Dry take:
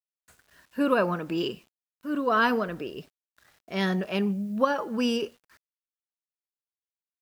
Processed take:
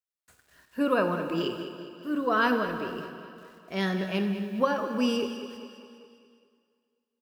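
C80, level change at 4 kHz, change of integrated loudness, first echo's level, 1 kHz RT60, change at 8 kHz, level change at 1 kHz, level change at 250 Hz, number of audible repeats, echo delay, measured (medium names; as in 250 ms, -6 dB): 7.5 dB, -1.0 dB, -1.5 dB, -12.5 dB, 2.3 s, -1.0 dB, -1.0 dB, -0.5 dB, 5, 204 ms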